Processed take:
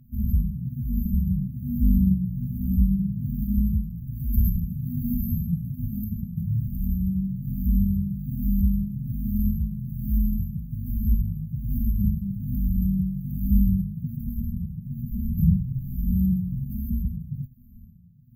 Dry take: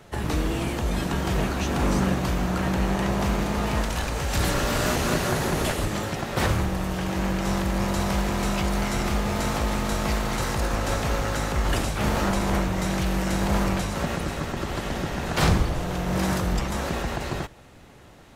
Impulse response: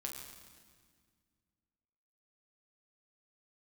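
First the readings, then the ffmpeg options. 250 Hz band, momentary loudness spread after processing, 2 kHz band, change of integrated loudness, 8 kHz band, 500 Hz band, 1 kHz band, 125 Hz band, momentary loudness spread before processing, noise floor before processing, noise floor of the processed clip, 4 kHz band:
+1.0 dB, 9 LU, under -40 dB, -1.0 dB, under -40 dB, under -40 dB, under -40 dB, +2.0 dB, 5 LU, -48 dBFS, -46 dBFS, under -40 dB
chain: -af "afftfilt=real='re*pow(10,23/40*sin(2*PI*(0.85*log(max(b,1)*sr/1024/100)/log(2)-(-1.2)*(pts-256)/sr)))':imag='im*pow(10,23/40*sin(2*PI*(0.85*log(max(b,1)*sr/1024/100)/log(2)-(-1.2)*(pts-256)/sr)))':win_size=1024:overlap=0.75,afftfilt=real='re*(1-between(b*sr/4096,250,12000))':imag='im*(1-between(b*sr/4096,250,12000))':win_size=4096:overlap=0.75,volume=0.75"

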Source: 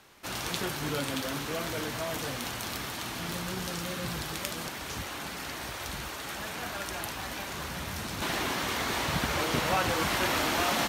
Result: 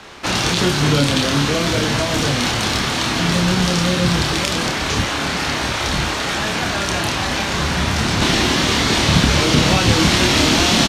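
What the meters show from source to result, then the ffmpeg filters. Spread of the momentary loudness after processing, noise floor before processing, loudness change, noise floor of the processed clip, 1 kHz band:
6 LU, -39 dBFS, +15.5 dB, -22 dBFS, +11.5 dB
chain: -filter_complex "[0:a]asplit=2[s0][s1];[s1]adelay=28,volume=0.631[s2];[s0][s2]amix=inputs=2:normalize=0,acrossover=split=340|3000[s3][s4][s5];[s4]acompressor=threshold=0.0112:ratio=6[s6];[s3][s6][s5]amix=inputs=3:normalize=0,lowpass=6000,aeval=exprs='0.299*(cos(1*acos(clip(val(0)/0.299,-1,1)))-cos(1*PI/2))+0.00266*(cos(8*acos(clip(val(0)/0.299,-1,1)))-cos(8*PI/2))':c=same,alimiter=level_in=8.91:limit=0.891:release=50:level=0:latency=1,volume=0.891"

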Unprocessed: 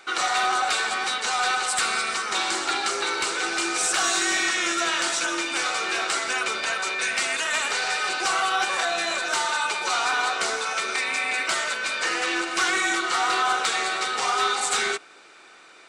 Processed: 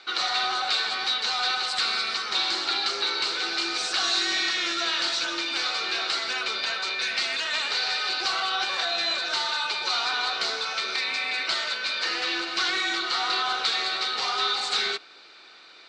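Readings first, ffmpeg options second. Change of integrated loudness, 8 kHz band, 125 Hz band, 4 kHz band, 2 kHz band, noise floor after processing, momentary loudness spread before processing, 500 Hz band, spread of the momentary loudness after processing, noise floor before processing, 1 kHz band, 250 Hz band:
-1.5 dB, -10.0 dB, no reading, +3.5 dB, -4.0 dB, -50 dBFS, 3 LU, -5.5 dB, 2 LU, -49 dBFS, -5.5 dB, -5.5 dB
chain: -filter_complex "[0:a]asplit=2[s0][s1];[s1]asoftclip=type=hard:threshold=0.0237,volume=0.447[s2];[s0][s2]amix=inputs=2:normalize=0,lowpass=f=4300:t=q:w=4.2,volume=0.447"

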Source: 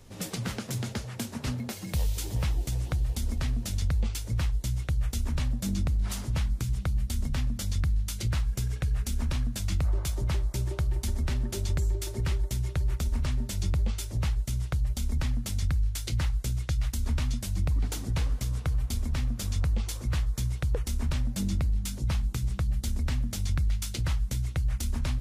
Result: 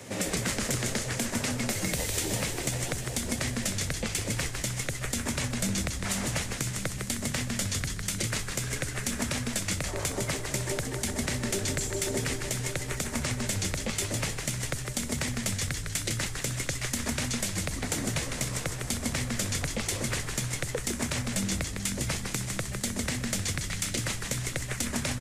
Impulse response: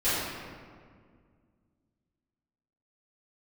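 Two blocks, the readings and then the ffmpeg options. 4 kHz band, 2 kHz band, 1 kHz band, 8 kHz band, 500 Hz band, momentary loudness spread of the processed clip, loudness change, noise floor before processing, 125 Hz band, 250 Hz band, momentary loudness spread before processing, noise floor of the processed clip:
+7.0 dB, +9.5 dB, +5.5 dB, +10.0 dB, +7.5 dB, 3 LU, 0.0 dB, -40 dBFS, -5.0 dB, +3.5 dB, 2 LU, -37 dBFS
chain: -filter_complex "[0:a]highpass=f=100:w=0.5412,highpass=f=100:w=1.3066,acrossover=split=540|4400[s0][s1][s2];[s0]acompressor=threshold=0.00794:ratio=4[s3];[s1]acompressor=threshold=0.00355:ratio=4[s4];[s2]acompressor=threshold=0.00562:ratio=4[s5];[s3][s4][s5]amix=inputs=3:normalize=0,equalizer=f=580:t=o:w=0.88:g=8.5,asplit=2[s6][s7];[s7]alimiter=level_in=2:limit=0.0631:level=0:latency=1,volume=0.501,volume=1.19[s8];[s6][s8]amix=inputs=2:normalize=0,equalizer=f=250:t=o:w=1:g=4,equalizer=f=2000:t=o:w=1:g=10,equalizer=f=8000:t=o:w=1:g=9,asplit=2[s9][s10];[s10]asplit=6[s11][s12][s13][s14][s15][s16];[s11]adelay=155,afreqshift=-130,volume=0.562[s17];[s12]adelay=310,afreqshift=-260,volume=0.263[s18];[s13]adelay=465,afreqshift=-390,volume=0.124[s19];[s14]adelay=620,afreqshift=-520,volume=0.0582[s20];[s15]adelay=775,afreqshift=-650,volume=0.0275[s21];[s16]adelay=930,afreqshift=-780,volume=0.0129[s22];[s17][s18][s19][s20][s21][s22]amix=inputs=6:normalize=0[s23];[s9][s23]amix=inputs=2:normalize=0"

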